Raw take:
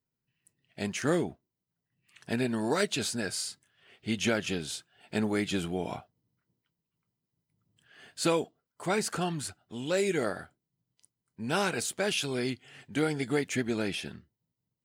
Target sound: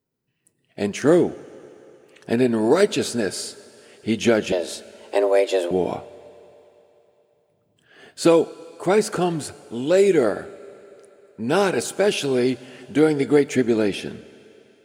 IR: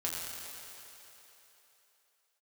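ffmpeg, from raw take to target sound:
-filter_complex "[0:a]equalizer=frequency=410:width_type=o:width=1.8:gain=10,asettb=1/sr,asplit=3[link_01][link_02][link_03];[link_01]atrim=end=4.524[link_04];[link_02]atrim=start=4.52:end=5.71,asetpts=PTS-STARTPTS,afade=type=in:duration=0.004:curve=qsin,afade=type=out:start_time=1.186:duration=0.004:curve=qsin,afreqshift=180[link_05];[link_03]atrim=start=5.706[link_06];[link_04][link_05]acrossfade=duration=0.004:curve1=hsin:curve2=qsin[link_07];[link_07][link_06]acrossfade=duration=0.004:curve1=qsin:curve2=hsin,asplit=2[link_08][link_09];[1:a]atrim=start_sample=2205[link_10];[link_09][link_10]afir=irnorm=-1:irlink=0,volume=-19.5dB[link_11];[link_08][link_11]amix=inputs=2:normalize=0,volume=3dB"

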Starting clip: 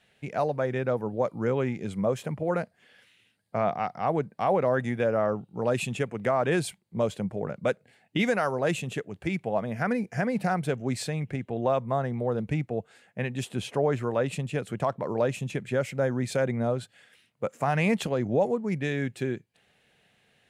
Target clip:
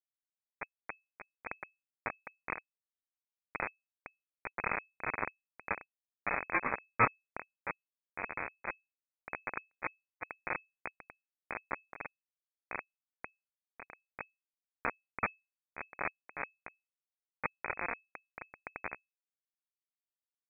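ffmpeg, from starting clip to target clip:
ffmpeg -i in.wav -filter_complex "[0:a]asoftclip=type=tanh:threshold=-25.5dB,asplit=2[link_01][link_02];[link_02]aecho=0:1:1031:0.562[link_03];[link_01][link_03]amix=inputs=2:normalize=0,asettb=1/sr,asplit=3[link_04][link_05][link_06];[link_04]atrim=end=6.544[link_07];[link_05]atrim=start=6.54:end=7.13,asetpts=PTS-STARTPTS,afade=type=in:duration=0.004:curve=qsin,afade=type=out:start_time=0.586:duration=0.004:curve=qsin,acontrast=60[link_08];[link_06]atrim=start=7.126[link_09];[link_07][link_08]acrossfade=duration=0.004:curve1=hsin:curve2=qsin[link_10];[link_10][link_09]acrossfade=duration=0.004:curve1=qsin:curve2=hsin,acrossover=split=500[link_11][link_12];[link_11]alimiter=level_in=4.5dB:limit=-24dB:level=0:latency=1:release=51,volume=-4.5dB[link_13];[link_13][link_12]amix=inputs=2:normalize=0,asettb=1/sr,asplit=3[link_14][link_15][link_16];[link_14]atrim=end=15.854[link_17];[link_15]atrim=start=15.85:end=16.37,asetpts=PTS-STARTPTS,afade=type=in:duration=0.004:curve=qsin,afade=type=out:start_time=0.516:duration=0.004:curve=qsin,aeval=exprs='val(0)+0.00891*(sin(2*PI*50*n/s)+sin(2*PI*2*50*n/s)/2+sin(2*PI*3*50*n/s)/3+sin(2*PI*4*50*n/s)/4+sin(2*PI*5*50*n/s)/5)':channel_layout=same[link_18];[link_16]atrim=start=16.366[link_19];[link_17][link_18]acrossfade=duration=0.004:curve1=hsin:curve2=qsin[link_20];[link_20][link_19]acrossfade=duration=0.004:curve1=qsin:curve2=hsin,aeval=exprs='val(0)*sin(2*PI*1900*n/s)':channel_layout=same,acrusher=bits=3:mix=0:aa=0.000001,asettb=1/sr,asplit=3[link_21][link_22][link_23];[link_21]atrim=end=9.644[link_24];[link_22]atrim=start=9.64:end=10.27,asetpts=PTS-STARTPTS,afade=type=in:duration=0.004:curve=qsin,afade=type=out:start_time=0.626:duration=0.004:curve=qsin,agate=range=-33dB:threshold=-40dB:ratio=3:detection=peak[link_25];[link_23]atrim=start=10.266[link_26];[link_24][link_25]acrossfade=duration=0.004:curve1=hsin:curve2=qsin[link_27];[link_27][link_26]acrossfade=duration=0.004:curve1=qsin:curve2=hsin,lowpass=frequency=2200:width_type=q:width=0.5098,lowpass=frequency=2200:width_type=q:width=0.6013,lowpass=frequency=2200:width_type=q:width=0.9,lowpass=frequency=2200:width_type=q:width=2.563,afreqshift=-2600,volume=6dB" out.wav

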